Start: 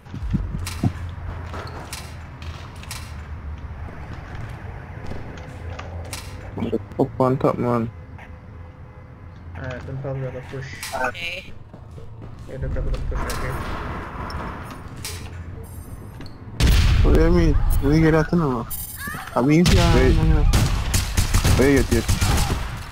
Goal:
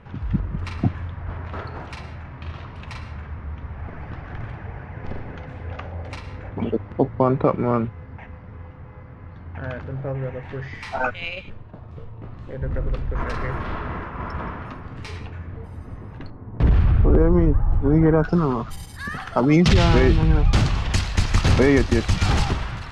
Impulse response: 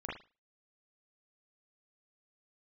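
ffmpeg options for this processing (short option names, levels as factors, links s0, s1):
-af "asetnsamples=n=441:p=0,asendcmd='16.3 lowpass f 1100;18.24 lowpass f 4900',lowpass=2800"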